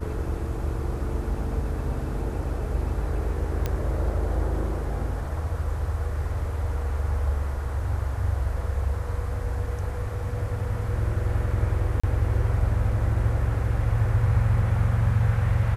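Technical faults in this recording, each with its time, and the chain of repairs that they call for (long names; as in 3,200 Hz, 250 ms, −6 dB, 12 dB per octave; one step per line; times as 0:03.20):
0:03.66: click −13 dBFS
0:12.00–0:12.04: drop-out 35 ms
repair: click removal
repair the gap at 0:12.00, 35 ms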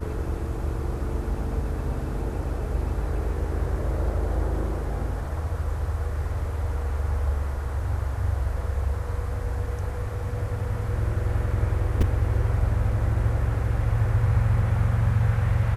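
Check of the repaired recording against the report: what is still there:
none of them is left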